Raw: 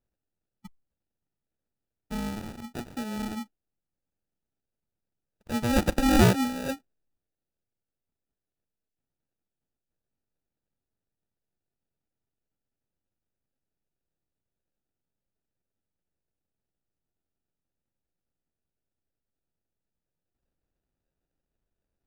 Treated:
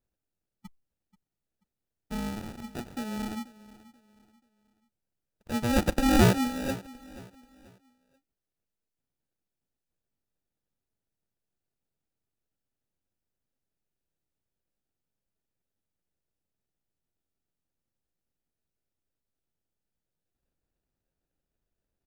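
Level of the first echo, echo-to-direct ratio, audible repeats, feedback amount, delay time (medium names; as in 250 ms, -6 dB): -19.0 dB, -18.5 dB, 2, 34%, 484 ms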